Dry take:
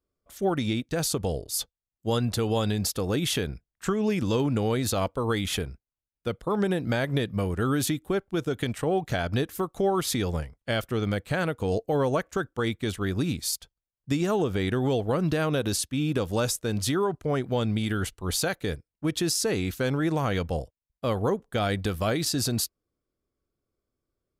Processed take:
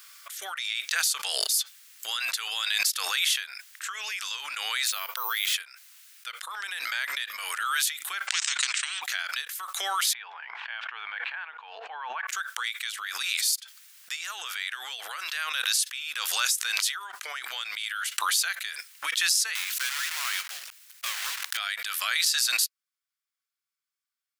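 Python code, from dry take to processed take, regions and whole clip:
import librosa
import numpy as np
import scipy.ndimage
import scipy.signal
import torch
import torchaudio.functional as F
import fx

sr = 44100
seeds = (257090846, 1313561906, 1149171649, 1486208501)

y = fx.chain(x, sr, fx.lowpass(hz=9700.0, slope=12),
    fx.low_shelf(hz=470.0, db=12.0),
    fx.resample_bad(factor=3, down='none', up='hold'), at=(4.88, 5.54))
y = fx.chain(y, sr, fx.ellip_lowpass(hz=8100.0, order=4, stop_db=50),
    fx.transient(attack_db=5, sustain_db=-11),
    fx.spectral_comp(ratio=10.0), at=(8.27, 9.02))
y = fx.chain(y, sr, fx.cabinet(low_hz=210.0, low_slope=12, high_hz=2200.0, hz=(230.0, 340.0, 550.0, 880.0, 1300.0, 2000.0), db=(7, -9, -9, 8, -9, -10)),
    fx.sustainer(db_per_s=22.0), at=(10.13, 12.27))
y = fx.chain(y, sr, fx.block_float(bits=3),
    fx.highpass(hz=370.0, slope=12), at=(19.55, 21.59))
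y = scipy.signal.sosfilt(scipy.signal.butter(4, 1500.0, 'highpass', fs=sr, output='sos'), y)
y = fx.pre_swell(y, sr, db_per_s=26.0)
y = y * 10.0 ** (3.5 / 20.0)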